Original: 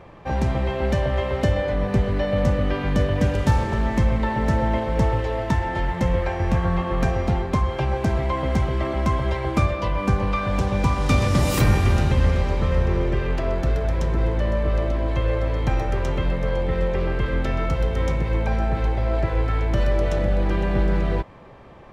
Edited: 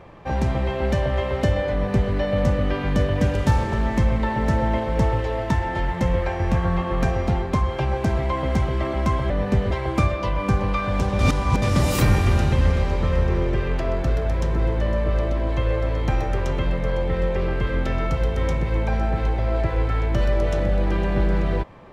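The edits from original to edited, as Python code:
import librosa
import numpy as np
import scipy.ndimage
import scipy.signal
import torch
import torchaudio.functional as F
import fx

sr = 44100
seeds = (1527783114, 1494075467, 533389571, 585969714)

y = fx.edit(x, sr, fx.duplicate(start_s=1.72, length_s=0.41, to_s=9.3),
    fx.reverse_span(start_s=10.78, length_s=0.43), tone=tone)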